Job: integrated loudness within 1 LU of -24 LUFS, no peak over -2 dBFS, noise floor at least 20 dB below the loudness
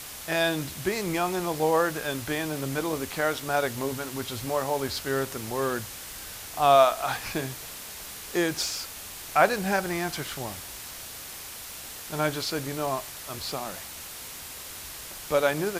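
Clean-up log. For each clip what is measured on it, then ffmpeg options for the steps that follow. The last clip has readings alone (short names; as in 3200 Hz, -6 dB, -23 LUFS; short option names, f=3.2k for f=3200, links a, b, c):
noise floor -41 dBFS; noise floor target -49 dBFS; loudness -28.5 LUFS; peak -4.5 dBFS; loudness target -24.0 LUFS
-> -af "afftdn=nr=8:nf=-41"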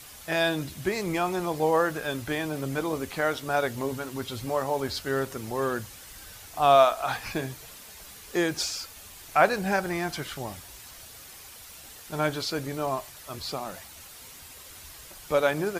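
noise floor -47 dBFS; noise floor target -48 dBFS
-> -af "afftdn=nr=6:nf=-47"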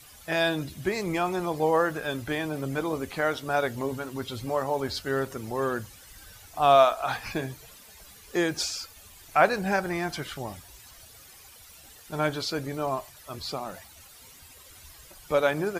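noise floor -51 dBFS; loudness -28.0 LUFS; peak -4.5 dBFS; loudness target -24.0 LUFS
-> -af "volume=4dB,alimiter=limit=-2dB:level=0:latency=1"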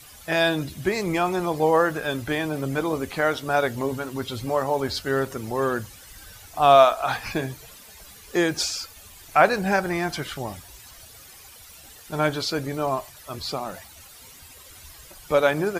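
loudness -24.0 LUFS; peak -2.0 dBFS; noise floor -47 dBFS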